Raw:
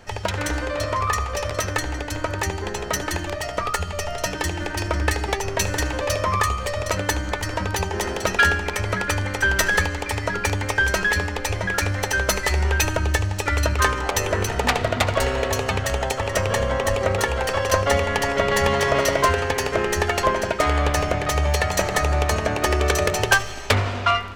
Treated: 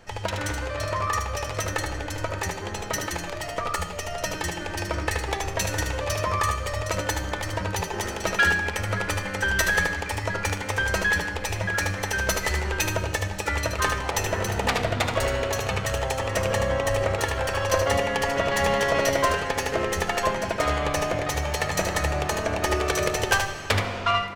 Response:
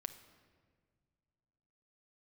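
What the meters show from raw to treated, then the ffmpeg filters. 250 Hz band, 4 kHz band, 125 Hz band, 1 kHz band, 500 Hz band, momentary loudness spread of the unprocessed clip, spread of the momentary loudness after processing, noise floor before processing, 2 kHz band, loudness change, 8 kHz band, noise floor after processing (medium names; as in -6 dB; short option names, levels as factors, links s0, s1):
-3.5 dB, -3.0 dB, -4.5 dB, -3.5 dB, -3.0 dB, 7 LU, 7 LU, -30 dBFS, -3.0 dB, -3.5 dB, -3.0 dB, -34 dBFS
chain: -filter_complex "[0:a]aecho=1:1:76:0.501[s0];[1:a]atrim=start_sample=2205[s1];[s0][s1]afir=irnorm=-1:irlink=0,volume=0.891"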